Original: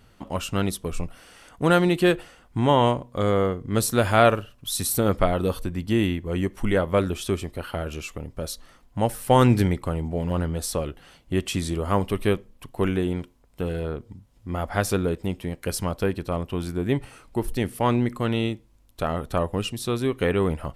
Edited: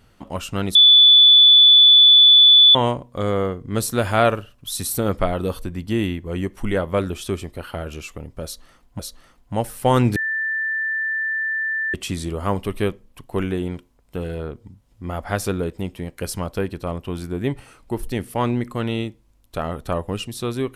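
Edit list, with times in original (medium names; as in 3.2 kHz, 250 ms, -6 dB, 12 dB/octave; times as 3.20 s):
0.75–2.75 s: bleep 3.47 kHz -7 dBFS
8.44–8.99 s: loop, 2 plays
9.61–11.39 s: bleep 1.77 kHz -20.5 dBFS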